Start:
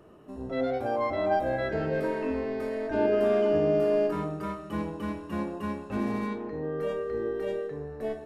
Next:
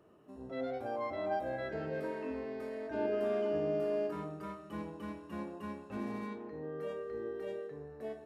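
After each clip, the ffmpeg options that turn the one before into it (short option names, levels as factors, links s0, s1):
-af "highpass=f=96:p=1,volume=0.355"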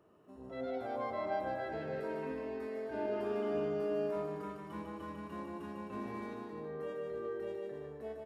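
-filter_complex "[0:a]equalizer=f=990:w=1.5:g=2.5,asplit=2[s0][s1];[s1]aecho=0:1:150|262.5|346.9|410.2|457.6:0.631|0.398|0.251|0.158|0.1[s2];[s0][s2]amix=inputs=2:normalize=0,volume=0.668"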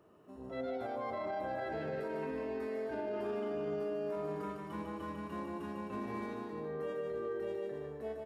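-af "alimiter=level_in=2.82:limit=0.0631:level=0:latency=1:release=42,volume=0.355,volume=1.33"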